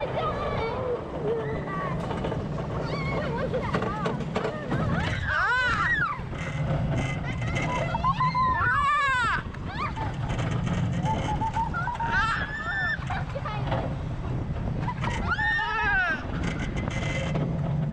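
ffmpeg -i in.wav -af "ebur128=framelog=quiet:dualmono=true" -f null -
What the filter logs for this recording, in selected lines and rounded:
Integrated loudness:
  I:         -24.3 LUFS
  Threshold: -34.3 LUFS
Loudness range:
  LRA:         3.8 LU
  Threshold: -44.1 LUFS
  LRA low:   -26.4 LUFS
  LRA high:  -22.6 LUFS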